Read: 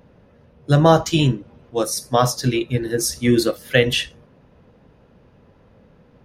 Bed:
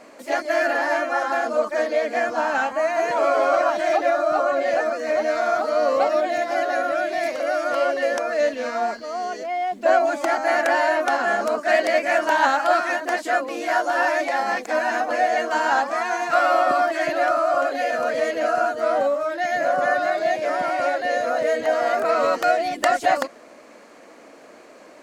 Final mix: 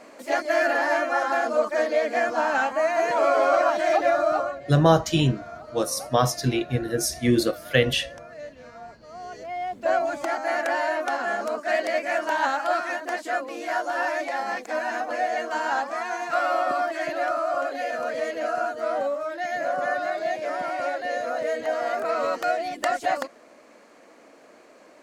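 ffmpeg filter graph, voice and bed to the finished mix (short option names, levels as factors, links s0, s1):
-filter_complex "[0:a]adelay=4000,volume=0.631[s0];[1:a]volume=3.98,afade=t=out:st=4.28:d=0.31:silence=0.133352,afade=t=in:st=8.97:d=0.65:silence=0.223872[s1];[s0][s1]amix=inputs=2:normalize=0"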